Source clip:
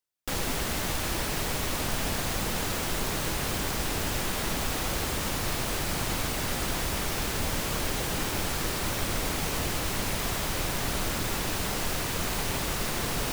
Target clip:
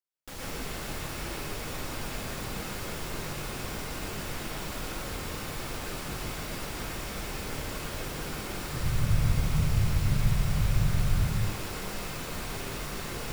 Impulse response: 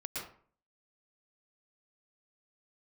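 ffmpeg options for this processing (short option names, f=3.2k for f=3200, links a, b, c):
-filter_complex "[0:a]asettb=1/sr,asplit=3[a][b][c];[a]atrim=end=8.734[d];[b]atrim=start=8.73:end=11.35,asetpts=PTS-STARTPTS,afade=t=in:d=0.004:c=qsin,afade=t=out:st=2.616:d=0.004:c=qsin,lowshelf=f=200:t=q:w=1.5:g=13.5[e];[c]atrim=start=11.346[f];[d][e]acrossfade=d=0.004:c1=hsin:c2=qsin[g];[g][f]acrossfade=d=0.004:c1=qsin:c2=hsin[h];[1:a]atrim=start_sample=2205[i];[h][i]afir=irnorm=-1:irlink=0,volume=-7dB"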